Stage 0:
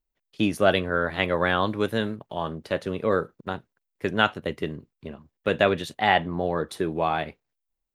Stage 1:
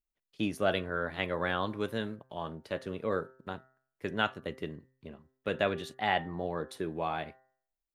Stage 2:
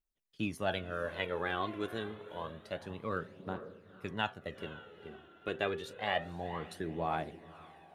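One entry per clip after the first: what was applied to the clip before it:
de-hum 130.7 Hz, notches 15; trim -8.5 dB
echo that smears into a reverb 481 ms, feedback 43%, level -14.5 dB; phaser 0.28 Hz, delay 3 ms, feedback 50%; trim -4.5 dB

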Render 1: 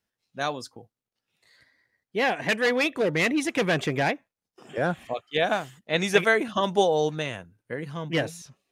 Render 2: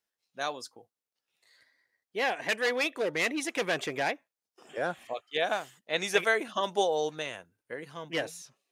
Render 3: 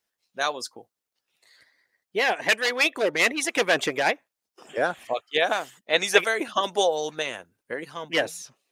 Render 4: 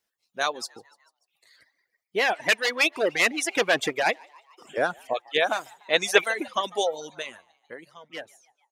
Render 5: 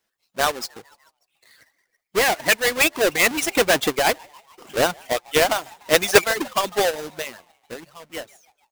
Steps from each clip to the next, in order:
tone controls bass -13 dB, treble +3 dB; trim -4.5 dB
harmonic-percussive split percussive +9 dB
fade out at the end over 2.64 s; frequency-shifting echo 147 ms, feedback 51%, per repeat +88 Hz, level -17 dB; reverb removal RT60 0.95 s
square wave that keeps the level; trim +1 dB

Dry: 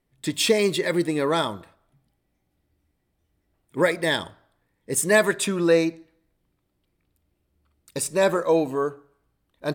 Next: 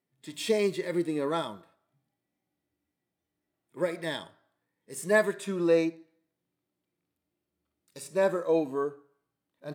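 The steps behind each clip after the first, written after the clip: high-pass 170 Hz 12 dB/octave; harmonic-percussive split percussive -13 dB; trim -4.5 dB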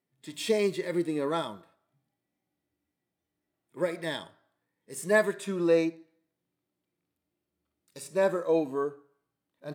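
no audible change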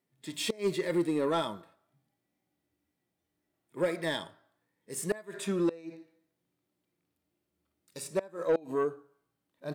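inverted gate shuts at -16 dBFS, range -26 dB; saturation -21.5 dBFS, distortion -16 dB; trim +2 dB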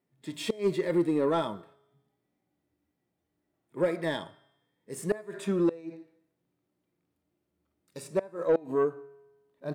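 treble shelf 2.1 kHz -9 dB; feedback comb 140 Hz, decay 1.2 s, harmonics odd, mix 40%; trim +7.5 dB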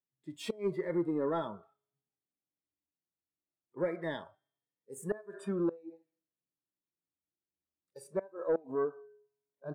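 spectral noise reduction 17 dB; trim -6 dB

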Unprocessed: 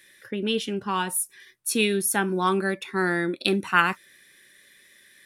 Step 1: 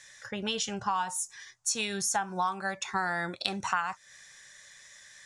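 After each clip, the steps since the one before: FFT filter 120 Hz 0 dB, 300 Hz -20 dB, 430 Hz -13 dB, 770 Hz +6 dB, 2.4 kHz -7 dB, 3.8 kHz -4 dB, 6.8 kHz +10 dB, 13 kHz -26 dB; compression 6:1, threshold -32 dBFS, peak gain reduction 17.5 dB; trim +5 dB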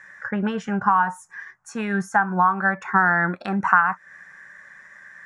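FFT filter 120 Hz 0 dB, 180 Hz +13 dB, 500 Hz +4 dB, 1.6 kHz +14 dB, 3.6 kHz -17 dB, 6.3 kHz -15 dB; trim +1.5 dB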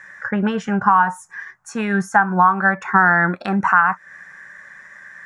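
loudness maximiser +5.5 dB; trim -1 dB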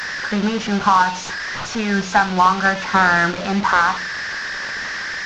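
one-bit delta coder 32 kbps, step -20.5 dBFS; hum notches 60/120/180 Hz; flutter echo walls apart 7.5 m, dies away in 0.2 s

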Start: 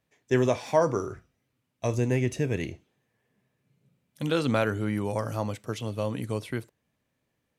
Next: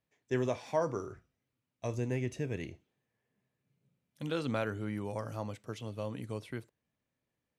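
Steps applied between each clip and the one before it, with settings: treble shelf 9.7 kHz -6 dB; trim -8.5 dB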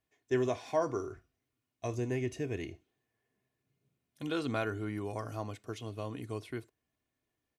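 comb 2.8 ms, depth 50%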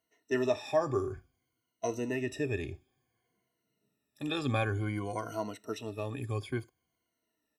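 drifting ripple filter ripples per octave 1.9, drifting -0.56 Hz, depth 19 dB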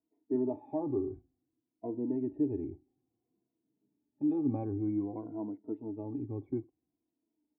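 cascade formant filter u; trim +8 dB

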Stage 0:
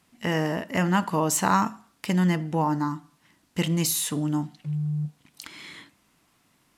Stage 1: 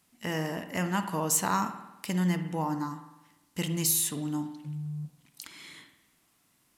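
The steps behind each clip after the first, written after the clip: treble shelf 6.1 kHz +10.5 dB; spring tank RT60 1 s, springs 50 ms, chirp 40 ms, DRR 9 dB; trim -7 dB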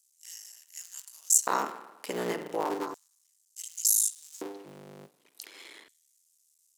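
cycle switcher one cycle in 3, muted; LFO high-pass square 0.34 Hz 430–6700 Hz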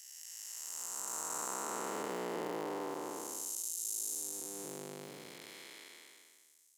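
spectral blur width 818 ms; compression 2.5:1, threshold -43 dBFS, peak gain reduction 8 dB; trim +5 dB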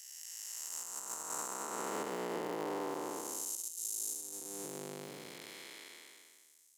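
peak limiter -29 dBFS, peak gain reduction 9 dB; trim +1.5 dB

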